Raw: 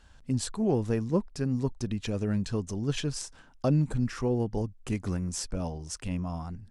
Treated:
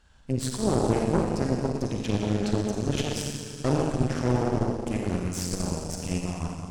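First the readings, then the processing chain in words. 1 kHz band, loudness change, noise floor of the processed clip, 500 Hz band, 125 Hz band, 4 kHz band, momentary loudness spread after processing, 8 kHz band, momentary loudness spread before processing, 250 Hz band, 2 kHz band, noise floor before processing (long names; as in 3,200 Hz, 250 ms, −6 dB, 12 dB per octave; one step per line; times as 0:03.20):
+8.0 dB, +3.0 dB, −40 dBFS, +4.5 dB, +2.0 dB, +4.0 dB, 7 LU, +3.5 dB, 8 LU, +3.0 dB, +5.0 dB, −56 dBFS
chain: four-comb reverb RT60 2.7 s, DRR −3 dB
harmonic generator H 4 −7 dB, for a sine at −11 dBFS
level −3.5 dB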